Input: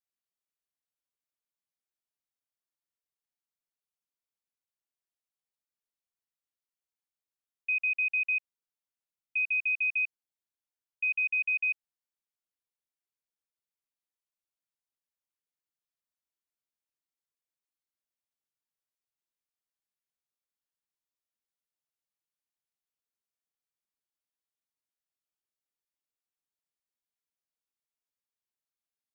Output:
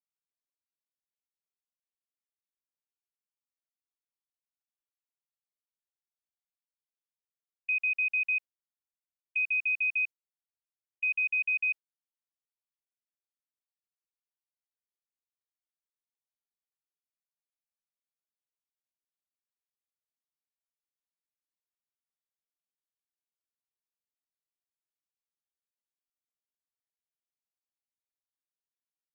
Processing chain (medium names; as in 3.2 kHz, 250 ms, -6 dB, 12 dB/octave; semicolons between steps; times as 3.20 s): gate -37 dBFS, range -16 dB